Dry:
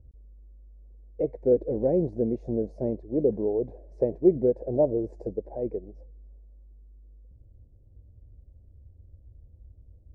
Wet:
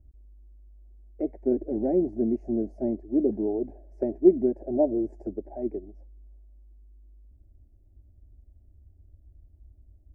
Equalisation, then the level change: dynamic EQ 260 Hz, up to +5 dB, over -37 dBFS, Q 0.7; fixed phaser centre 730 Hz, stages 8; 0.0 dB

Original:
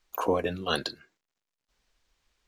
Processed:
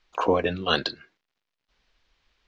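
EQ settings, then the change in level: LPF 4500 Hz 12 dB/oct; air absorption 110 m; high shelf 2700 Hz +9.5 dB; +4.0 dB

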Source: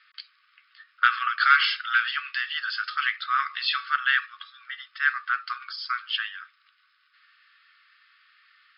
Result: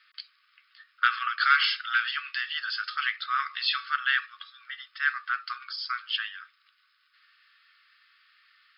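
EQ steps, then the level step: high shelf 4700 Hz +9 dB; -4.0 dB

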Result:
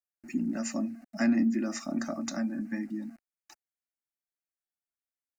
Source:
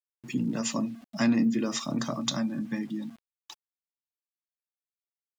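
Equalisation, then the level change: high shelf 7800 Hz -5.5 dB; fixed phaser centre 680 Hz, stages 8; 0.0 dB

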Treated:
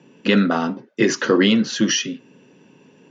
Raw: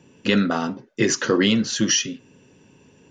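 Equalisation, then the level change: HPF 150 Hz 24 dB/oct; air absorption 110 m; +3.5 dB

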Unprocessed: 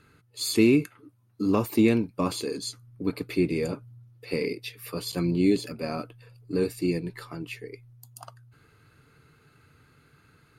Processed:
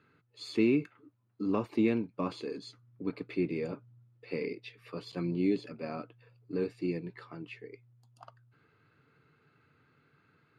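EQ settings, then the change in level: BPF 130–3200 Hz; -6.5 dB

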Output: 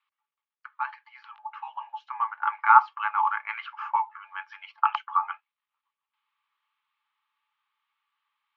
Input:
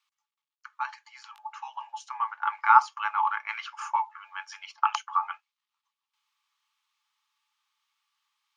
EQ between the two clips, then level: HPF 750 Hz 6 dB/oct; LPF 4300 Hz; air absorption 410 m; +5.5 dB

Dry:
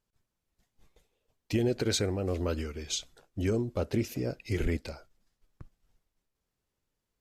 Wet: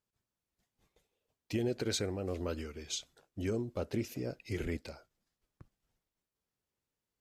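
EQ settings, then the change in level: HPF 84 Hz 6 dB/oct; -5.0 dB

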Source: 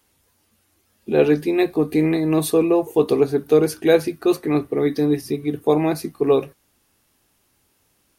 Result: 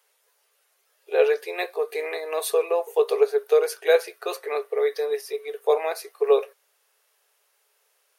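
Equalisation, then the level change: rippled Chebyshev high-pass 410 Hz, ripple 3 dB; 0.0 dB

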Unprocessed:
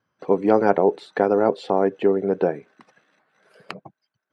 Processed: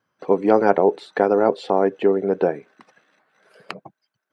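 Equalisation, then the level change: low shelf 130 Hz -8 dB; +2.0 dB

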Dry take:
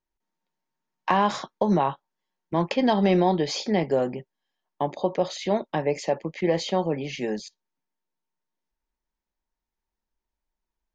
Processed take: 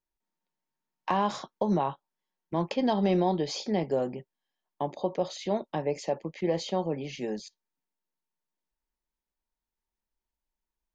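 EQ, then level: dynamic EQ 1900 Hz, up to -5 dB, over -43 dBFS, Q 1.3; -4.5 dB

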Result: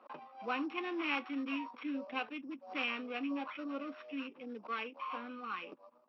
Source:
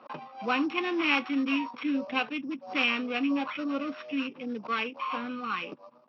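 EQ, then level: HPF 260 Hz 12 dB/oct; high shelf 4200 Hz -10 dB; -7.5 dB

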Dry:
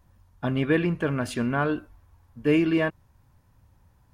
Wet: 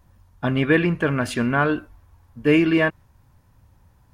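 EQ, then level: dynamic EQ 1900 Hz, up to +4 dB, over -41 dBFS, Q 1; +4.0 dB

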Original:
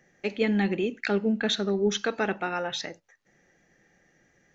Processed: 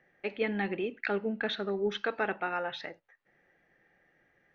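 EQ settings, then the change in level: air absorption 380 m; bell 210 Hz -3 dB 0.7 oct; low shelf 460 Hz -9.5 dB; +1.5 dB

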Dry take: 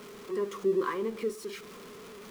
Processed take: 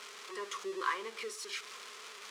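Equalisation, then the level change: Bessel high-pass 1300 Hz, order 2; air absorption 85 m; high shelf 5100 Hz +11.5 dB; +4.5 dB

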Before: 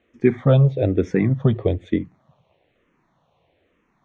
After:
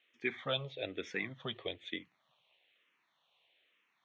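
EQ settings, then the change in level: band-pass 3300 Hz, Q 2.1; +3.5 dB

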